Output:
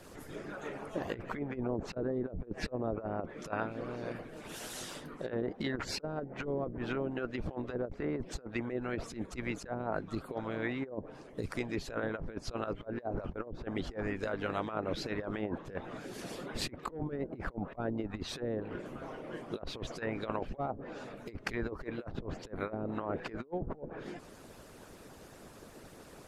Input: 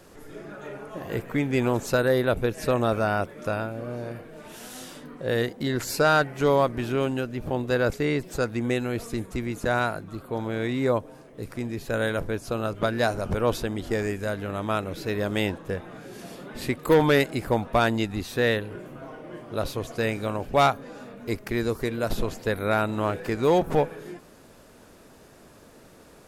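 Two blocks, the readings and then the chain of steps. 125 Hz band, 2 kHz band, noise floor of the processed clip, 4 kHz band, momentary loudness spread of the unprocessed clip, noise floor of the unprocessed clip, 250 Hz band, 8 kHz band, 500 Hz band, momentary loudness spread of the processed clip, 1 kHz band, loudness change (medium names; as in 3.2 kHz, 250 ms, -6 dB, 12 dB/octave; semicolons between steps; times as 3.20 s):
-12.0 dB, -12.5 dB, -54 dBFS, -10.5 dB, 18 LU, -51 dBFS, -9.5 dB, -9.5 dB, -13.0 dB, 9 LU, -13.5 dB, -12.5 dB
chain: low-pass that closes with the level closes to 430 Hz, closed at -18.5 dBFS; harmonic-percussive split harmonic -16 dB; compressor with a negative ratio -36 dBFS, ratio -0.5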